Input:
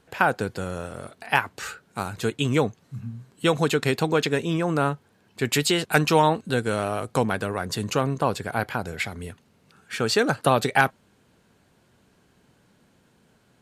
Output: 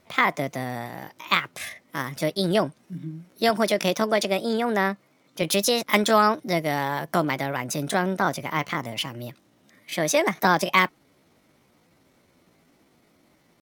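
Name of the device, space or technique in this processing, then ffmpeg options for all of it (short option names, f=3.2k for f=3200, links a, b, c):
chipmunk voice: -filter_complex "[0:a]asettb=1/sr,asplit=3[a][b][c];[a]atrim=end=3.504[d];[b]atrim=start=3.5:end=5.44,asetpts=PTS-STARTPTS,afade=t=in:d=0.004:c=qsin,afade=t=out:st=1.936:d=0.004:c=qsin,highpass=88[e];[c]atrim=start=5.436[f];[d][e]acrossfade=d=0.004:c1=hsin:c2=qsin[g];[g][f]acrossfade=d=0.004:c1=qsin:c2=hsin,asetrate=60591,aresample=44100,atempo=0.727827"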